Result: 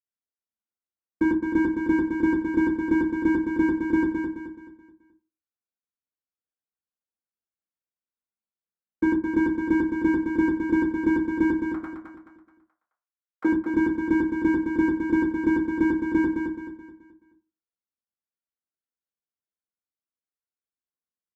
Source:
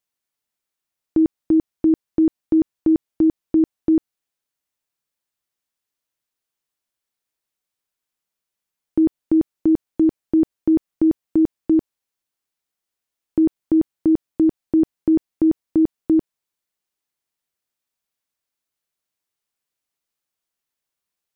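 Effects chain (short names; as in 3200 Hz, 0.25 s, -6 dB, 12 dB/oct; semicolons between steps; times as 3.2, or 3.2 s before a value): 11.57–13.4 steep high-pass 1000 Hz 36 dB/oct; sample leveller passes 5; in parallel at -7 dB: hard clip -21.5 dBFS, distortion -18 dB; on the sum: feedback echo 0.214 s, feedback 39%, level -5.5 dB; reverb RT60 0.30 s, pre-delay 48 ms; gain -8.5 dB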